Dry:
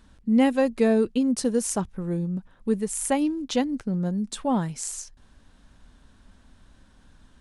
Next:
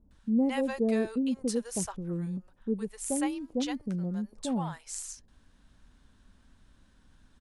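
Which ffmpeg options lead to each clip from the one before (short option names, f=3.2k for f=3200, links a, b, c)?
-filter_complex "[0:a]acrossover=split=680[a][b];[b]adelay=110[c];[a][c]amix=inputs=2:normalize=0,volume=-6dB"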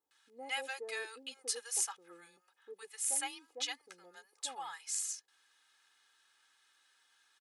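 -af "highpass=1.4k,aecho=1:1:2.4:0.93"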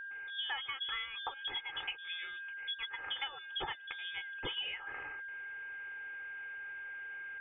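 -af "lowpass=f=3.2k:t=q:w=0.5098,lowpass=f=3.2k:t=q:w=0.6013,lowpass=f=3.2k:t=q:w=0.9,lowpass=f=3.2k:t=q:w=2.563,afreqshift=-3800,aeval=exprs='val(0)+0.00158*sin(2*PI*1600*n/s)':c=same,acompressor=threshold=-50dB:ratio=10,volume=14dB"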